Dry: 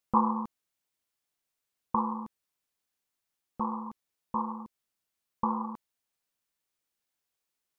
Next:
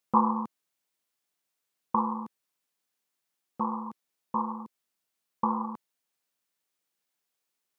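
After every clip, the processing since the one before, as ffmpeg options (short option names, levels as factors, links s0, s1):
-af "highpass=140,volume=1.26"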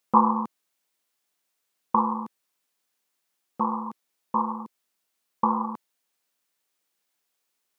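-af "equalizer=f=81:w=0.68:g=-6.5,volume=1.78"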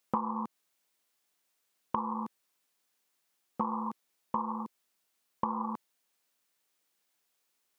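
-af "acompressor=threshold=0.0398:ratio=16"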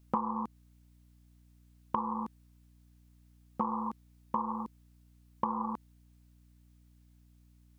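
-af "aeval=exprs='val(0)+0.001*(sin(2*PI*60*n/s)+sin(2*PI*2*60*n/s)/2+sin(2*PI*3*60*n/s)/3+sin(2*PI*4*60*n/s)/4+sin(2*PI*5*60*n/s)/5)':c=same"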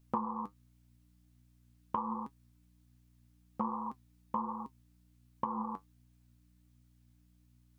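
-af "flanger=delay=7.2:depth=3.4:regen=55:speed=1.3:shape=sinusoidal,volume=1.12"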